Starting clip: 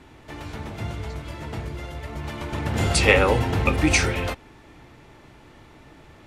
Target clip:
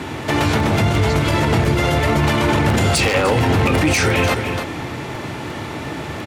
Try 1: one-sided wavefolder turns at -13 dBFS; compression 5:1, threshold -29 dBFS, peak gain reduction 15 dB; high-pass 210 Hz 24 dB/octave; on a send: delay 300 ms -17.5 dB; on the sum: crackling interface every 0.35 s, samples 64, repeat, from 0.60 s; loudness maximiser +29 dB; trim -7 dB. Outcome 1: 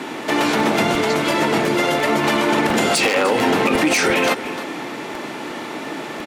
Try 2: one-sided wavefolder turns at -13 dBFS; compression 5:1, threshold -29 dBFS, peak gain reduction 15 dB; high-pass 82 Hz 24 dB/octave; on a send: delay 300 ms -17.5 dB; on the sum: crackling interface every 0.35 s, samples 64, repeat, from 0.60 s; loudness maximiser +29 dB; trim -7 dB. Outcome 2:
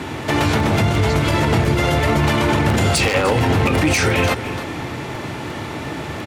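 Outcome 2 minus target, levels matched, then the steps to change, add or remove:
compression: peak gain reduction +6 dB
change: compression 5:1, threshold -21.5 dBFS, peak gain reduction 9 dB

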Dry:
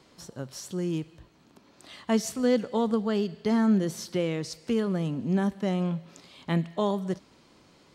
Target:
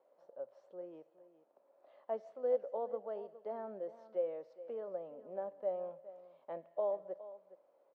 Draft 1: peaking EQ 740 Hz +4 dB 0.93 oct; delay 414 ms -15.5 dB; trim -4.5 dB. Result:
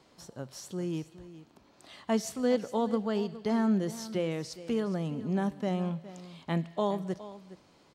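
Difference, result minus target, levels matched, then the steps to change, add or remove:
500 Hz band -5.0 dB
add first: ladder band-pass 600 Hz, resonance 75%

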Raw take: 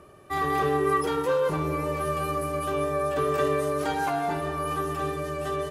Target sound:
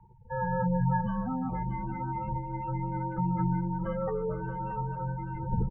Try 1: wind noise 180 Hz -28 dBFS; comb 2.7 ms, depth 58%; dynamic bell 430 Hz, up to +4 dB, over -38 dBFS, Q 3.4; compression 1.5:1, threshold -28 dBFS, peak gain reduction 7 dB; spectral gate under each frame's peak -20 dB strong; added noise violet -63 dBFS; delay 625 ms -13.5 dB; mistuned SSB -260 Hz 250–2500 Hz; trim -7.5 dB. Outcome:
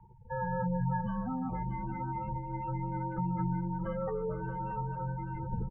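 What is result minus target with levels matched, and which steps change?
compression: peak gain reduction +7 dB
remove: compression 1.5:1, threshold -28 dBFS, peak gain reduction 7 dB

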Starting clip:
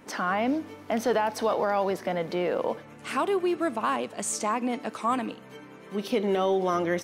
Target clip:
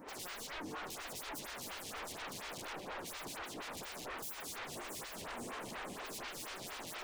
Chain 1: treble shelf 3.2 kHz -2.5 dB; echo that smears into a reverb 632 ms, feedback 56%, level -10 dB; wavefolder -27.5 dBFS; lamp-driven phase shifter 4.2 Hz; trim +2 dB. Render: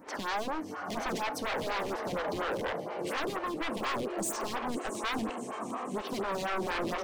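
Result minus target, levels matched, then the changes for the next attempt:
wavefolder: distortion -22 dB
change: wavefolder -39 dBFS

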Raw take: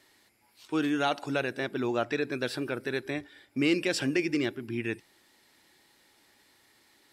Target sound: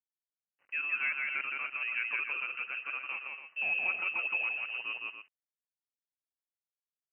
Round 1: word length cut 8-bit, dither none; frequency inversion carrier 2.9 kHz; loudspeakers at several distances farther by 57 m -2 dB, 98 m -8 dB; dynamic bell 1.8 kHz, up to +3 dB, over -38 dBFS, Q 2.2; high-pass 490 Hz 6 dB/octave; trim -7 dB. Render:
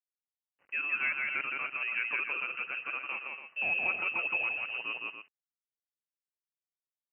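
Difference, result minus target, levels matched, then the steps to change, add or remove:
500 Hz band +4.5 dB
change: high-pass 1.3 kHz 6 dB/octave

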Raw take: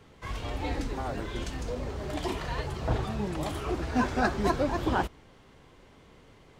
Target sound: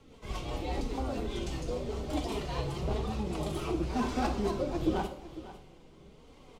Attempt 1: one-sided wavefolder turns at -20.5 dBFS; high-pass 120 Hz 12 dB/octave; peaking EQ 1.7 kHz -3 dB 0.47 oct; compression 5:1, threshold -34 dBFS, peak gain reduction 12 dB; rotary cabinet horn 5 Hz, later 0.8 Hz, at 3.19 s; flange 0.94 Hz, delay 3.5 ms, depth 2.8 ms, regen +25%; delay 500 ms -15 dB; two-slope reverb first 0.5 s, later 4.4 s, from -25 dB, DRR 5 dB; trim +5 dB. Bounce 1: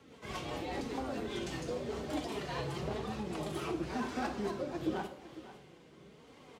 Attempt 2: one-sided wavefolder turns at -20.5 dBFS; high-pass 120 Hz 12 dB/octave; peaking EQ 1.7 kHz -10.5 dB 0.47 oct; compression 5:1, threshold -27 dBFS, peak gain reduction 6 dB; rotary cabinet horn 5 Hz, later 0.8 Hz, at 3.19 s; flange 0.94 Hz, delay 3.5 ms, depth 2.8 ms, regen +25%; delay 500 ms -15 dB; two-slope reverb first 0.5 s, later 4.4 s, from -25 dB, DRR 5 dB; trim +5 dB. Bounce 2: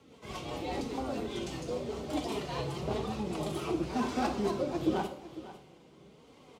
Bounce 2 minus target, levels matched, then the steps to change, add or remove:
125 Hz band -3.5 dB
remove: high-pass 120 Hz 12 dB/octave

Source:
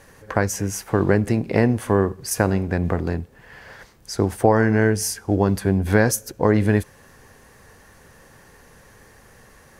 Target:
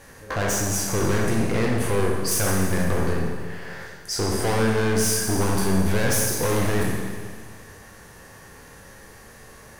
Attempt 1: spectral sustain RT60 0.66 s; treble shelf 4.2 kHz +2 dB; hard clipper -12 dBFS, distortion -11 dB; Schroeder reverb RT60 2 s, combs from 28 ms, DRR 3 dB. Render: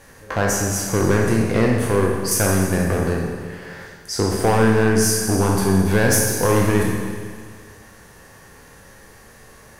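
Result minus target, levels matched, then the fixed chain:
hard clipper: distortion -7 dB
spectral sustain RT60 0.66 s; treble shelf 4.2 kHz +2 dB; hard clipper -21.5 dBFS, distortion -4 dB; Schroeder reverb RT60 2 s, combs from 28 ms, DRR 3 dB

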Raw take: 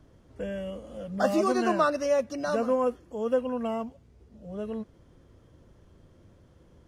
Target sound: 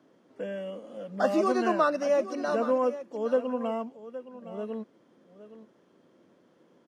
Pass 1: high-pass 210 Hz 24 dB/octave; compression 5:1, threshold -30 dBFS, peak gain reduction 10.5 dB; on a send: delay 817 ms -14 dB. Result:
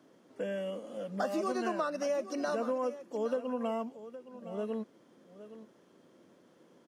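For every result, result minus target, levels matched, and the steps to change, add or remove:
compression: peak gain reduction +10.5 dB; 8 kHz band +6.0 dB
remove: compression 5:1, threshold -30 dBFS, peak gain reduction 10.5 dB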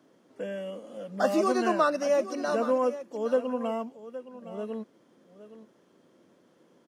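8 kHz band +5.0 dB
add after high-pass: treble shelf 6.7 kHz -10.5 dB

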